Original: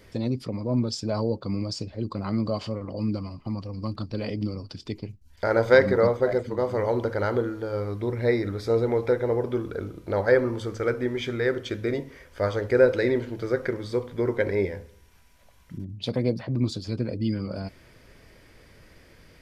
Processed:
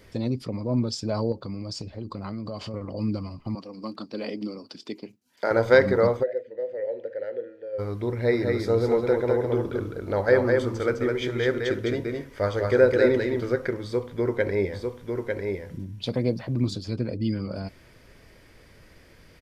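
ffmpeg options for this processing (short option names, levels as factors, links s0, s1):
-filter_complex "[0:a]asettb=1/sr,asplit=3[s0][s1][s2];[s0]atrim=end=1.324[s3];[s1]atrim=start=1.32:end=2.74,asetpts=PTS-STARTPTS,afade=t=in:d=0.004:c=qsin,afade=t=out:st=1.416:d=0.004:c=qsin,acompressor=threshold=0.0355:ratio=6:attack=3.2:release=140:knee=1:detection=peak[s4];[s2]atrim=start=2.736[s5];[s3][s4]acrossfade=d=0.004:c1=hsin:c2=qsin[s6];[s6][s5]acrossfade=d=0.004:c1=qsin:c2=hsin,asettb=1/sr,asplit=3[s7][s8][s9];[s7]atrim=end=3.554[s10];[s8]atrim=start=3.55:end=5.51,asetpts=PTS-STARTPTS,afade=t=in:d=0.004:c=qsin,afade=t=out:st=1.956:d=0.004:c=qsin,highpass=f=210:w=0.5412,highpass=f=210:w=1.3066[s11];[s9]atrim=start=5.506[s12];[s10][s11]acrossfade=d=0.004:c1=hsin:c2=qsin[s13];[s13][s12]acrossfade=d=0.004:c1=qsin:c2=hsin,asplit=3[s14][s15][s16];[s14]afade=t=out:st=6.22:d=0.02[s17];[s15]asplit=3[s18][s19][s20];[s18]bandpass=f=530:t=q:w=8,volume=1[s21];[s19]bandpass=f=1840:t=q:w=8,volume=0.501[s22];[s20]bandpass=f=2480:t=q:w=8,volume=0.355[s23];[s21][s22][s23]amix=inputs=3:normalize=0,afade=t=in:st=6.22:d=0.02,afade=t=out:st=7.78:d=0.02[s24];[s16]afade=t=in:st=7.78:d=0.02[s25];[s17][s24][s25]amix=inputs=3:normalize=0,asplit=3[s26][s27][s28];[s26]afade=t=out:st=8.31:d=0.02[s29];[s27]aecho=1:1:208:0.668,afade=t=in:st=8.31:d=0.02,afade=t=out:st=13.55:d=0.02[s30];[s28]afade=t=in:st=13.55:d=0.02[s31];[s29][s30][s31]amix=inputs=3:normalize=0,asplit=3[s32][s33][s34];[s32]afade=t=out:st=14.72:d=0.02[s35];[s33]aecho=1:1:899:0.596,afade=t=in:st=14.72:d=0.02,afade=t=out:st=16.74:d=0.02[s36];[s34]afade=t=in:st=16.74:d=0.02[s37];[s35][s36][s37]amix=inputs=3:normalize=0"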